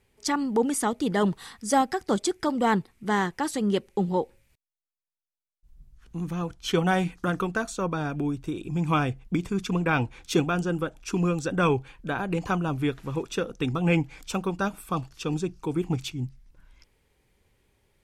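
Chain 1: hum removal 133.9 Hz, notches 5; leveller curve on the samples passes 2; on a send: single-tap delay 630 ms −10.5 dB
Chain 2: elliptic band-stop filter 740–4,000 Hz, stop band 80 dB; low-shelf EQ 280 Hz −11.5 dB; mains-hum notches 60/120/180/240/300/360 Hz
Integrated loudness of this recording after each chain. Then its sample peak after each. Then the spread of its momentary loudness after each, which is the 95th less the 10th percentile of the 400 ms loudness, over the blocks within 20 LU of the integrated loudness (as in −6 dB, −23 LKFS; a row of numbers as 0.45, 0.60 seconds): −21.5, −34.5 LKFS; −9.5, −15.5 dBFS; 9, 9 LU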